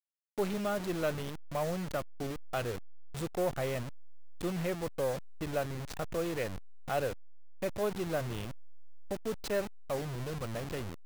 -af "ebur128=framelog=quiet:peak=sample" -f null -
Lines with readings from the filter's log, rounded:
Integrated loudness:
  I:         -36.1 LUFS
  Threshold: -46.3 LUFS
Loudness range:
  LRA:         1.2 LU
  Threshold: -56.6 LUFS
  LRA low:   -37.2 LUFS
  LRA high:  -36.0 LUFS
Sample peak:
  Peak:      -20.6 dBFS